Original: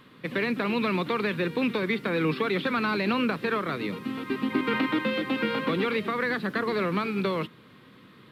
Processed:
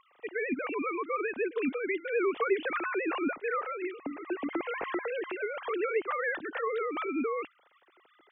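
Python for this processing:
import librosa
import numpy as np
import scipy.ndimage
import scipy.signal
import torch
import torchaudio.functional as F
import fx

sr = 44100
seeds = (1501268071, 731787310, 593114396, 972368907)

y = fx.sine_speech(x, sr)
y = F.gain(torch.from_numpy(y), -5.0).numpy()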